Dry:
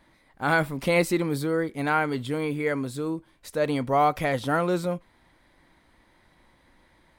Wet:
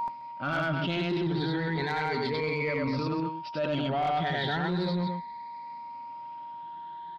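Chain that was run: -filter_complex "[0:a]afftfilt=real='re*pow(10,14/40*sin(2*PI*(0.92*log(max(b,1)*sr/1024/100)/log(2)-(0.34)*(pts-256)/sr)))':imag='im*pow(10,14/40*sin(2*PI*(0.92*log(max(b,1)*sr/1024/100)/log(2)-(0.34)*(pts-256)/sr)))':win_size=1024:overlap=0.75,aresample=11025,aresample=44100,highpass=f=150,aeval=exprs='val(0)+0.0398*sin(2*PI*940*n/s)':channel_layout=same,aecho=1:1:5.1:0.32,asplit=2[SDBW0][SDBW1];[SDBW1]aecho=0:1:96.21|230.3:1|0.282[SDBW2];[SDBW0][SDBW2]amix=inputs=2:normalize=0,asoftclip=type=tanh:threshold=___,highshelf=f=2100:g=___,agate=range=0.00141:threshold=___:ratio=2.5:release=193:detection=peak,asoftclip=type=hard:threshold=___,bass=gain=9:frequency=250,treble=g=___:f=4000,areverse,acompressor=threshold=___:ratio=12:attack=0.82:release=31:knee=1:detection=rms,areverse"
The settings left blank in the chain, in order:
0.376, 9.5, 0.0447, 0.376, 2, 0.0562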